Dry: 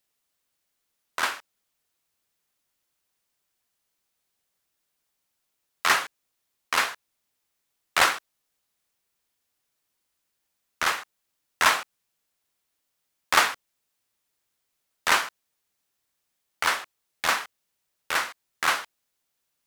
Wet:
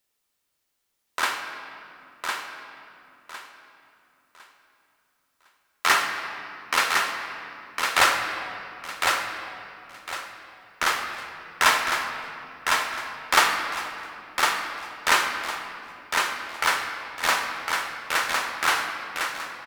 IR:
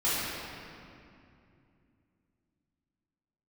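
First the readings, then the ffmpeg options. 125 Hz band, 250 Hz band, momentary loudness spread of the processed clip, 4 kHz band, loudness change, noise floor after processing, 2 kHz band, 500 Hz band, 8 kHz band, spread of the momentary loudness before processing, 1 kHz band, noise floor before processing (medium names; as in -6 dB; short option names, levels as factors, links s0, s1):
+4.0 dB, +4.5 dB, 19 LU, +3.5 dB, 0.0 dB, -76 dBFS, +3.5 dB, +3.5 dB, +3.0 dB, 13 LU, +4.0 dB, -79 dBFS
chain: -filter_complex "[0:a]aecho=1:1:1056|2112|3168|4224:0.631|0.183|0.0531|0.0154,asplit=2[s0][s1];[1:a]atrim=start_sample=2205[s2];[s1][s2]afir=irnorm=-1:irlink=0,volume=0.178[s3];[s0][s3]amix=inputs=2:normalize=0"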